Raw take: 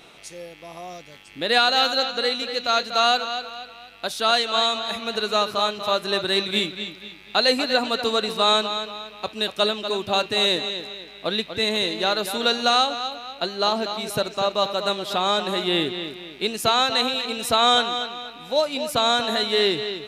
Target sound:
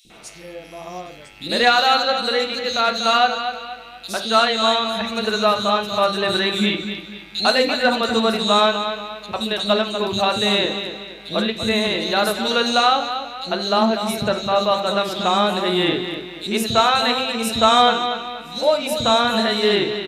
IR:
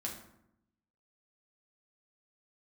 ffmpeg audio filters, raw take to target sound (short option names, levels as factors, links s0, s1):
-filter_complex "[0:a]acrossover=split=330|3900[s0][s1][s2];[s0]adelay=50[s3];[s1]adelay=100[s4];[s3][s4][s2]amix=inputs=3:normalize=0,acontrast=25,asplit=2[s5][s6];[s6]highshelf=f=8500:g=-11[s7];[1:a]atrim=start_sample=2205,atrim=end_sample=4410,lowshelf=f=110:g=8.5[s8];[s7][s8]afir=irnorm=-1:irlink=0,volume=0.944[s9];[s5][s9]amix=inputs=2:normalize=0,volume=0.596"